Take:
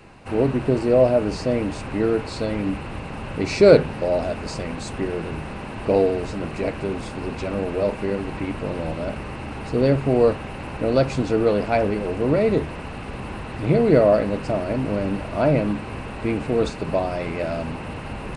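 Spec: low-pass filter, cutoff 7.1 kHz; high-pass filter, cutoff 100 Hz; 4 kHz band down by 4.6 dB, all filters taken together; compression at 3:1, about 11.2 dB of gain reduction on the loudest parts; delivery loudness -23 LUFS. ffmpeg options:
-af "highpass=100,lowpass=7100,equalizer=f=4000:t=o:g=-5.5,acompressor=threshold=0.0708:ratio=3,volume=1.78"

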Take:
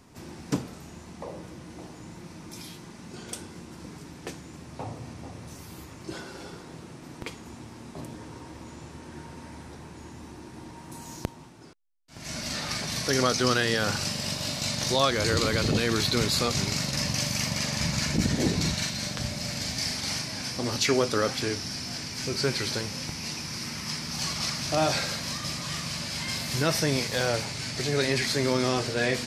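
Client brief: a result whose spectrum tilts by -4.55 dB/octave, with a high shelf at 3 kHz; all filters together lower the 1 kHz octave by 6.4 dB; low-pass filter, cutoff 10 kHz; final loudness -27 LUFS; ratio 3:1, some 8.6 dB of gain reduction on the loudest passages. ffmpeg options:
-af "lowpass=10000,equalizer=f=1000:t=o:g=-7.5,highshelf=f=3000:g=-9,acompressor=threshold=0.0224:ratio=3,volume=3.35"

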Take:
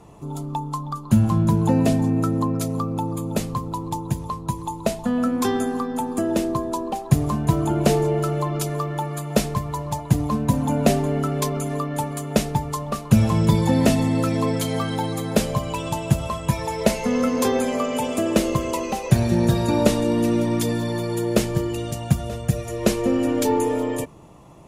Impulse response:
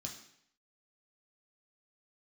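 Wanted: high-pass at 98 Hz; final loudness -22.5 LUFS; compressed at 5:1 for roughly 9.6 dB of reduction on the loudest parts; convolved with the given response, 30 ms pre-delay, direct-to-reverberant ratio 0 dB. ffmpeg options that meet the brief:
-filter_complex "[0:a]highpass=98,acompressor=threshold=0.0631:ratio=5,asplit=2[s0][s1];[1:a]atrim=start_sample=2205,adelay=30[s2];[s1][s2]afir=irnorm=-1:irlink=0,volume=1.41[s3];[s0][s3]amix=inputs=2:normalize=0"

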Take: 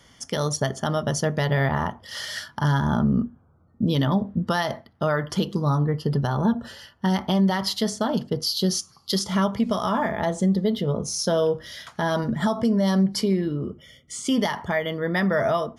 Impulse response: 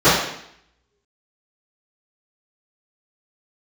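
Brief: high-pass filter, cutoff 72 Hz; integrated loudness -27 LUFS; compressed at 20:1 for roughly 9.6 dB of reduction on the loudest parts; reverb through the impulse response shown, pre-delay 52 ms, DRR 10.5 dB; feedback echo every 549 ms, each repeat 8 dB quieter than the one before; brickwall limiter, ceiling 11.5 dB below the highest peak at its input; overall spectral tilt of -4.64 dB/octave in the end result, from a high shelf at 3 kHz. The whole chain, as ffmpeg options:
-filter_complex "[0:a]highpass=72,highshelf=f=3000:g=6.5,acompressor=threshold=0.0501:ratio=20,alimiter=level_in=1.06:limit=0.0631:level=0:latency=1,volume=0.944,aecho=1:1:549|1098|1647|2196|2745:0.398|0.159|0.0637|0.0255|0.0102,asplit=2[s0][s1];[1:a]atrim=start_sample=2205,adelay=52[s2];[s1][s2]afir=irnorm=-1:irlink=0,volume=0.0133[s3];[s0][s3]amix=inputs=2:normalize=0,volume=2"

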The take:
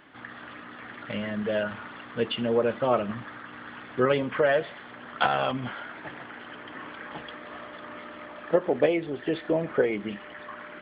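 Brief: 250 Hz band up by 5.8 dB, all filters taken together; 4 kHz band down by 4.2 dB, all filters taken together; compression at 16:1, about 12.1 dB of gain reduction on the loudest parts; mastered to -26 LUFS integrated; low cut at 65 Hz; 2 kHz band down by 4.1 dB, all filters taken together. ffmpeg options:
-af "highpass=65,equalizer=f=250:t=o:g=7.5,equalizer=f=2000:t=o:g=-5,equalizer=f=4000:t=o:g=-3.5,acompressor=threshold=0.0447:ratio=16,volume=2.82"

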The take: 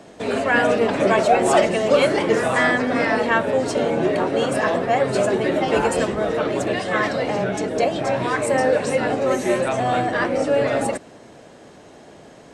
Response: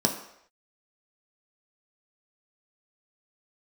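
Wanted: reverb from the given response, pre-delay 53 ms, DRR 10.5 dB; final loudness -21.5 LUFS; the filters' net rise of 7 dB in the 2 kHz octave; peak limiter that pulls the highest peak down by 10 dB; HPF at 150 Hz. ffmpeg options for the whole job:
-filter_complex "[0:a]highpass=150,equalizer=f=2000:t=o:g=8.5,alimiter=limit=0.266:level=0:latency=1,asplit=2[s0][s1];[1:a]atrim=start_sample=2205,adelay=53[s2];[s1][s2]afir=irnorm=-1:irlink=0,volume=0.0841[s3];[s0][s3]amix=inputs=2:normalize=0,volume=0.841"

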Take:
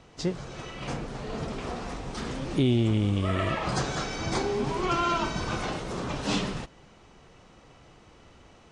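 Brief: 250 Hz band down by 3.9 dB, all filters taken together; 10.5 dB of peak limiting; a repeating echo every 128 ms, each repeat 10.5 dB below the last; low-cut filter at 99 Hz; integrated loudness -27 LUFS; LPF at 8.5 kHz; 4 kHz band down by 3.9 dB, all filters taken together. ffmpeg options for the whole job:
-af "highpass=99,lowpass=8500,equalizer=f=250:t=o:g=-5,equalizer=f=4000:t=o:g=-5,alimiter=level_in=1.19:limit=0.0631:level=0:latency=1,volume=0.841,aecho=1:1:128|256|384:0.299|0.0896|0.0269,volume=2.66"

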